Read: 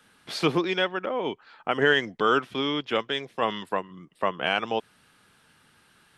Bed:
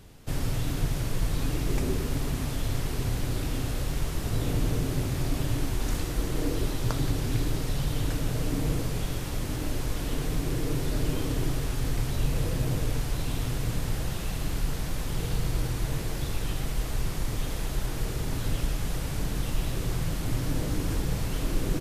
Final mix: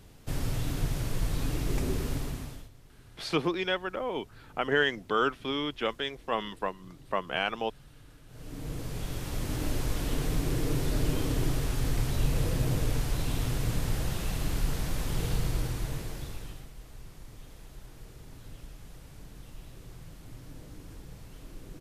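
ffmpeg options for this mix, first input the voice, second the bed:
ffmpeg -i stem1.wav -i stem2.wav -filter_complex "[0:a]adelay=2900,volume=-4.5dB[link_01];[1:a]volume=23dB,afade=type=out:start_time=2.09:duration=0.61:silence=0.0668344,afade=type=in:start_time=8.27:duration=1.37:silence=0.0530884,afade=type=out:start_time=15.29:duration=1.41:silence=0.133352[link_02];[link_01][link_02]amix=inputs=2:normalize=0" out.wav

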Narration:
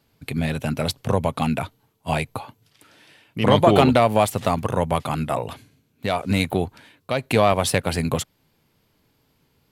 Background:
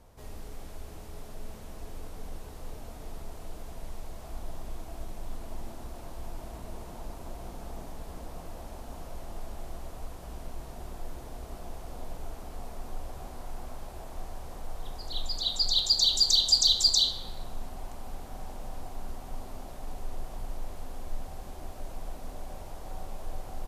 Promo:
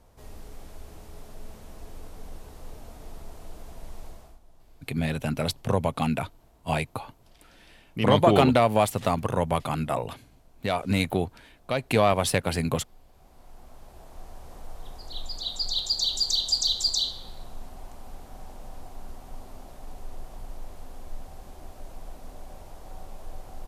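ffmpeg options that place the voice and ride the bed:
ffmpeg -i stem1.wav -i stem2.wav -filter_complex "[0:a]adelay=4600,volume=-3.5dB[link_01];[1:a]volume=14.5dB,afade=type=out:start_time=4.07:duration=0.32:silence=0.141254,afade=type=in:start_time=13.09:duration=1.48:silence=0.16788[link_02];[link_01][link_02]amix=inputs=2:normalize=0" out.wav

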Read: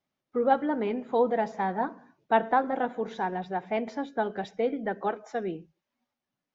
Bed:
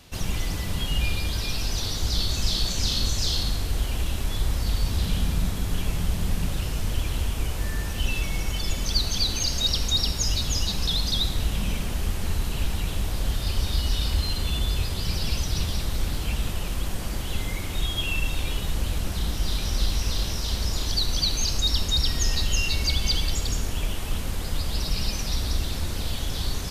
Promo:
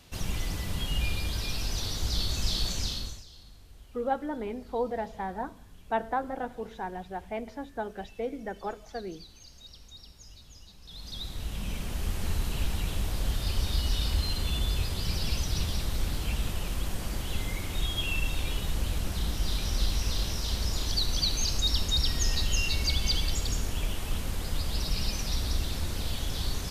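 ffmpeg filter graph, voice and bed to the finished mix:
ffmpeg -i stem1.wav -i stem2.wav -filter_complex "[0:a]adelay=3600,volume=-6dB[link_01];[1:a]volume=18dB,afade=type=out:start_time=2.71:duration=0.53:silence=0.0841395,afade=type=in:start_time=10.84:duration=1.42:silence=0.0749894[link_02];[link_01][link_02]amix=inputs=2:normalize=0" out.wav

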